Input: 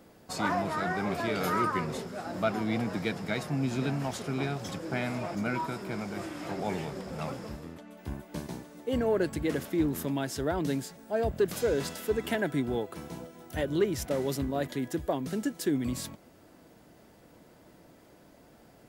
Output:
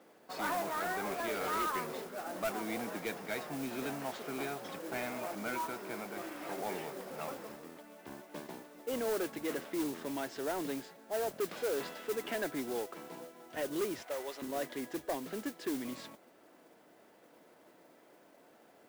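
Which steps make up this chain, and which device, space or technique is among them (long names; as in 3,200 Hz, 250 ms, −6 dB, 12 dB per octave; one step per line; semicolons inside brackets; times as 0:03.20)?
0:14.02–0:14.42: high-pass filter 600 Hz 12 dB per octave
carbon microphone (band-pass filter 340–3,200 Hz; soft clipping −27 dBFS, distortion −13 dB; noise that follows the level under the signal 12 dB)
level −2 dB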